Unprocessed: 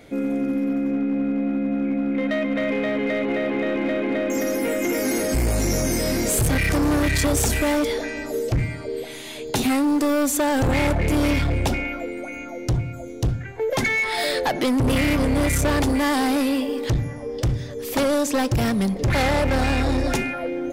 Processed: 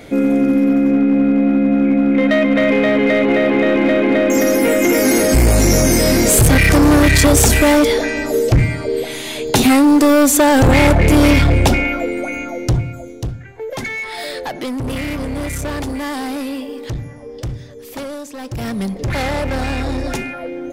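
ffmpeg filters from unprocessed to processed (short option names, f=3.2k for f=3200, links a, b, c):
-af "volume=20.5dB,afade=t=out:st=12.31:d=1.01:silence=0.237137,afade=t=out:st=17.47:d=0.89:silence=0.398107,afade=t=in:st=18.36:d=0.45:silence=0.281838"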